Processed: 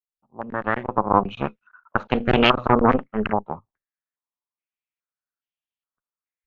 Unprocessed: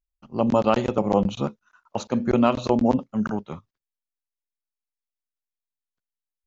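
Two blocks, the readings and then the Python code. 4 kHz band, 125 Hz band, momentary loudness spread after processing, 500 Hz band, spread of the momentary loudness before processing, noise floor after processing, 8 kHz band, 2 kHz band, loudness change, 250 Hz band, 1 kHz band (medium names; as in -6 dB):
+10.0 dB, +1.0 dB, 14 LU, 0.0 dB, 14 LU, under -85 dBFS, no reading, +11.0 dB, +1.5 dB, -2.0 dB, +5.5 dB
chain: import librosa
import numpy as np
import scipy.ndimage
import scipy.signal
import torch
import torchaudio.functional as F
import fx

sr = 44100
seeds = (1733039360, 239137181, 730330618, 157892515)

y = fx.fade_in_head(x, sr, length_s=2.05)
y = fx.cheby_harmonics(y, sr, harmonics=(6,), levels_db=(-8,), full_scale_db=-4.5)
y = fx.filter_held_lowpass(y, sr, hz=2.4, low_hz=870.0, high_hz=3000.0)
y = y * librosa.db_to_amplitude(-2.5)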